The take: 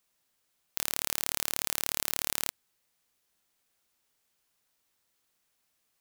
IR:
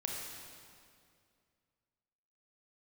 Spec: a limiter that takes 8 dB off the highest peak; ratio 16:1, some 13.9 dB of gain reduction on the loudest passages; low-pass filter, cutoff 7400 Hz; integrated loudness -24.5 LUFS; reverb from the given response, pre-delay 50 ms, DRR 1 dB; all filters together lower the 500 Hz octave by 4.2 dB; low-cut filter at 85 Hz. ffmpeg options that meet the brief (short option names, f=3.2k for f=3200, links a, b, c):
-filter_complex "[0:a]highpass=85,lowpass=7.4k,equalizer=f=500:t=o:g=-5.5,acompressor=threshold=-42dB:ratio=16,alimiter=level_in=2.5dB:limit=-24dB:level=0:latency=1,volume=-2.5dB,asplit=2[a][b];[1:a]atrim=start_sample=2205,adelay=50[c];[b][c]afir=irnorm=-1:irlink=0,volume=-3dB[d];[a][d]amix=inputs=2:normalize=0,volume=26dB"